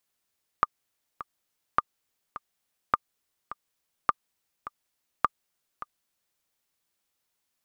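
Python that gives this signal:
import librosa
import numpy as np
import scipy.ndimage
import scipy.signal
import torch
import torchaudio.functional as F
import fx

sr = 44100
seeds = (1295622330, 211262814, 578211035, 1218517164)

y = fx.click_track(sr, bpm=104, beats=2, bars=5, hz=1200.0, accent_db=15.5, level_db=-7.0)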